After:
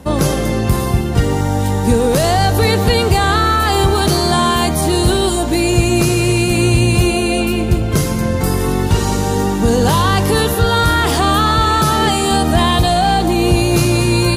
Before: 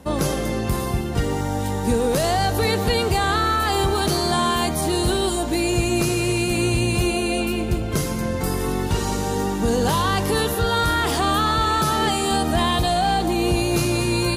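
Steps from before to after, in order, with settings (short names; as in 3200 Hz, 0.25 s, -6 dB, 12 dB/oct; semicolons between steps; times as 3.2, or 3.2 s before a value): bell 100 Hz +4 dB 1.6 oct; gain +6 dB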